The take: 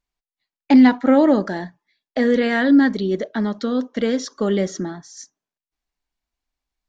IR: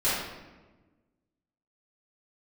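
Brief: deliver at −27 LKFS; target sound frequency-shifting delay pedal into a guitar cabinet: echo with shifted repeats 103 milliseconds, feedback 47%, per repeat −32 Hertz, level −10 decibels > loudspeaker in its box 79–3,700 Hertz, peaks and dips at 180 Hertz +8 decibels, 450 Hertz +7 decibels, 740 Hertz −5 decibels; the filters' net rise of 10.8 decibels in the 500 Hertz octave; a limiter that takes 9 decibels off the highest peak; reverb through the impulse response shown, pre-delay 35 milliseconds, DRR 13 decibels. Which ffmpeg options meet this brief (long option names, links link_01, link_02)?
-filter_complex "[0:a]equalizer=frequency=500:width_type=o:gain=8,alimiter=limit=-8.5dB:level=0:latency=1,asplit=2[link_01][link_02];[1:a]atrim=start_sample=2205,adelay=35[link_03];[link_02][link_03]afir=irnorm=-1:irlink=0,volume=-26dB[link_04];[link_01][link_04]amix=inputs=2:normalize=0,asplit=6[link_05][link_06][link_07][link_08][link_09][link_10];[link_06]adelay=103,afreqshift=-32,volume=-10dB[link_11];[link_07]adelay=206,afreqshift=-64,volume=-16.6dB[link_12];[link_08]adelay=309,afreqshift=-96,volume=-23.1dB[link_13];[link_09]adelay=412,afreqshift=-128,volume=-29.7dB[link_14];[link_10]adelay=515,afreqshift=-160,volume=-36.2dB[link_15];[link_05][link_11][link_12][link_13][link_14][link_15]amix=inputs=6:normalize=0,highpass=79,equalizer=frequency=180:width_type=q:width=4:gain=8,equalizer=frequency=450:width_type=q:width=4:gain=7,equalizer=frequency=740:width_type=q:width=4:gain=-5,lowpass=frequency=3700:width=0.5412,lowpass=frequency=3700:width=1.3066,volume=-12.5dB"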